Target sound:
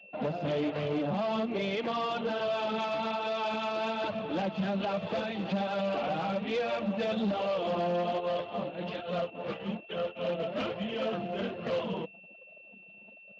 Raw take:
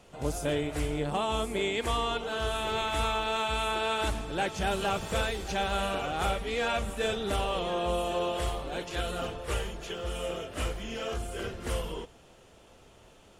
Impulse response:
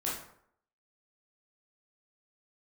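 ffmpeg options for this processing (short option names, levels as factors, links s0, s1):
-filter_complex "[0:a]highpass=f=140:w=0.5412,highpass=f=140:w=1.3066,equalizer=f=200:t=q:w=4:g=10,equalizer=f=400:t=q:w=4:g=-5,equalizer=f=600:t=q:w=4:g=6,lowpass=f=3600:w=0.5412,lowpass=f=3600:w=1.3066,flanger=delay=1.6:depth=4.6:regen=-4:speed=1.2:shape=sinusoidal,asplit=3[s0][s1][s2];[s0]afade=t=out:st=8.19:d=0.02[s3];[s1]tremolo=f=3.6:d=0.77,afade=t=in:st=8.19:d=0.02,afade=t=out:st=10.38:d=0.02[s4];[s2]afade=t=in:st=10.38:d=0.02[s5];[s3][s4][s5]amix=inputs=3:normalize=0,anlmdn=0.00251,alimiter=level_in=1.41:limit=0.0631:level=0:latency=1:release=175,volume=0.708,asoftclip=type=hard:threshold=0.0211,adynamicequalizer=threshold=0.00141:dfrequency=1700:dqfactor=1.4:tfrequency=1700:tqfactor=1.4:attack=5:release=100:ratio=0.375:range=2.5:mode=cutabove:tftype=bell,aeval=exprs='val(0)+0.00126*sin(2*PI*2700*n/s)':c=same,volume=2.24" -ar 16000 -c:a libspeex -b:a 21k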